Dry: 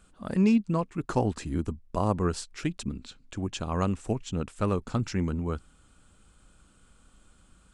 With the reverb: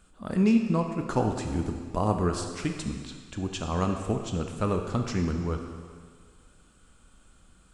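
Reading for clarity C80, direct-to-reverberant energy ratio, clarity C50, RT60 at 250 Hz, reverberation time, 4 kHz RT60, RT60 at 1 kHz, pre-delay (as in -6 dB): 6.5 dB, 4.0 dB, 5.5 dB, 1.7 s, 1.8 s, 1.8 s, 1.9 s, 14 ms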